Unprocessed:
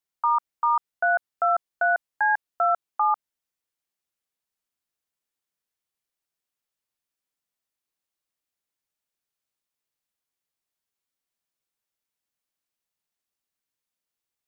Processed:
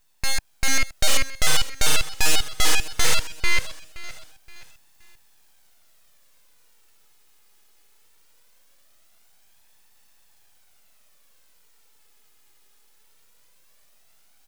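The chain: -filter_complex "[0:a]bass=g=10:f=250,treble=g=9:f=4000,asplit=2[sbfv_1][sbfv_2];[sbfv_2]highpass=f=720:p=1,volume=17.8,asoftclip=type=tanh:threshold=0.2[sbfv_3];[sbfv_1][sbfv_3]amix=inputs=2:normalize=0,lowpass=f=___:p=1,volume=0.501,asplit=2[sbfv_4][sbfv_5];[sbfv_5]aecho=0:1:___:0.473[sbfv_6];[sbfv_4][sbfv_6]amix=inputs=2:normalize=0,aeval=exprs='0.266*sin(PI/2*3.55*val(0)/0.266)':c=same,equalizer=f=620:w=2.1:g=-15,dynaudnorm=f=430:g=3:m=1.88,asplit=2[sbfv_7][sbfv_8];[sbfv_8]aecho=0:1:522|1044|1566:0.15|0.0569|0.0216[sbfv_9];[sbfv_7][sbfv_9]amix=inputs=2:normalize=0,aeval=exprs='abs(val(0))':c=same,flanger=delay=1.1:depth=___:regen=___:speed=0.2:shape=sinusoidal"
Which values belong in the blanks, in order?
1400, 444, 1.3, 51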